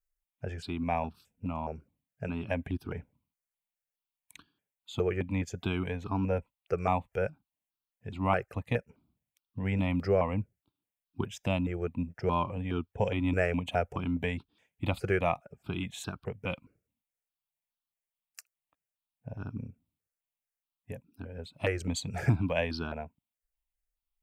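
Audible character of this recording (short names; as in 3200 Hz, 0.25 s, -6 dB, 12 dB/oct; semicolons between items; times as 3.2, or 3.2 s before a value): notches that jump at a steady rate 4.8 Hz 970–2000 Hz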